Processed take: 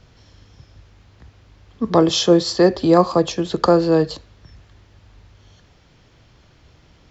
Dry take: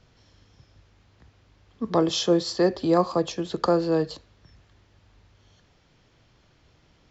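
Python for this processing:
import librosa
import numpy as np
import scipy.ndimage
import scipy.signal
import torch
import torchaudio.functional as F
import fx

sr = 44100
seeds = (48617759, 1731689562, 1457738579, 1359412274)

y = fx.peak_eq(x, sr, hz=60.0, db=4.0, octaves=1.8)
y = y * librosa.db_to_amplitude(7.0)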